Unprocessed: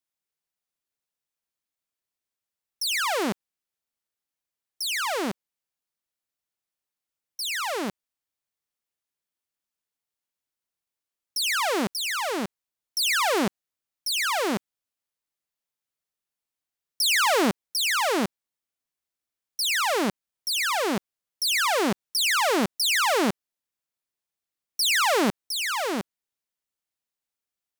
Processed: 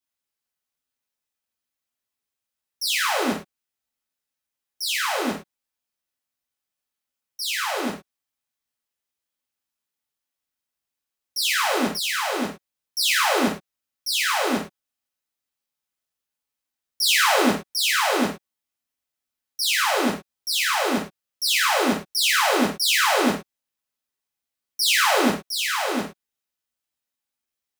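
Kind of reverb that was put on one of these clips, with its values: gated-style reverb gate 130 ms falling, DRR -4.5 dB; trim -3 dB

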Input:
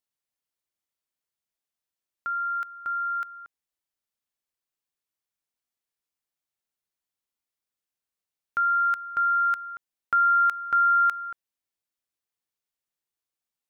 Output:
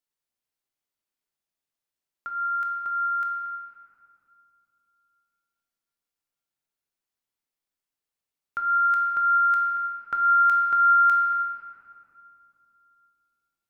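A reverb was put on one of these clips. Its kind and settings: simulated room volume 120 m³, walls hard, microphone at 0.37 m; trim -2 dB

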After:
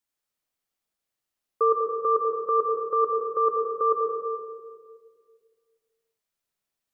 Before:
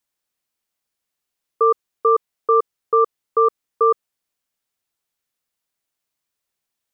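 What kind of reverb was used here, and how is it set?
algorithmic reverb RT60 1.9 s, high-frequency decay 0.25×, pre-delay 45 ms, DRR 0.5 dB; trim -6 dB

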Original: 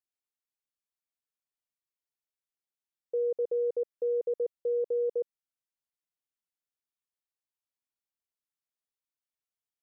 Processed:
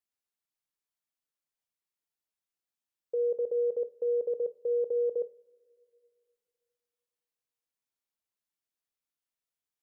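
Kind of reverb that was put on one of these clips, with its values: two-slope reverb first 0.36 s, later 2.6 s, from -22 dB, DRR 11 dB

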